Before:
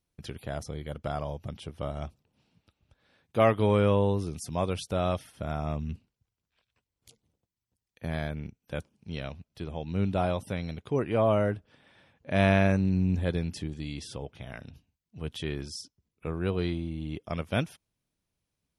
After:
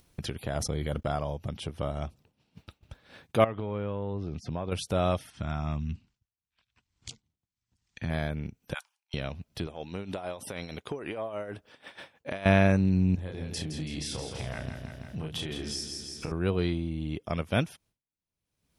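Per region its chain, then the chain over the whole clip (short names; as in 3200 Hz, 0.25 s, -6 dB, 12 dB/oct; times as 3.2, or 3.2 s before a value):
0.55–1.16 gate -46 dBFS, range -33 dB + fast leveller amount 70%
3.44–4.72 air absorption 240 m + compressor 10:1, threshold -31 dBFS
5.3–8.1 steep low-pass 8000 Hz + bell 500 Hz -12.5 dB 0.97 oct
8.74–9.14 steep high-pass 810 Hz 48 dB/oct + three-band expander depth 100%
9.67–12.46 tone controls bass -12 dB, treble +2 dB + compressor, threshold -34 dBFS + tremolo 6.4 Hz, depth 62%
13.15–16.32 compressor 16:1, threshold -36 dBFS + doubler 32 ms -3.5 dB + feedback echo 0.165 s, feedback 48%, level -7 dB
whole clip: expander -57 dBFS; upward compressor, threshold -30 dBFS; gain +1.5 dB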